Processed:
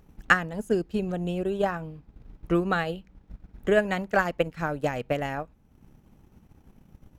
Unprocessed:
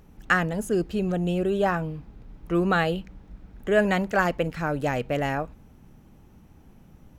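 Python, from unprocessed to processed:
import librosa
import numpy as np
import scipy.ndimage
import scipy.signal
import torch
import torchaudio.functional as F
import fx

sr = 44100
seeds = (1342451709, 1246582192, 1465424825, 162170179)

y = fx.transient(x, sr, attack_db=8, sustain_db=-7)
y = y * 10.0 ** (-4.5 / 20.0)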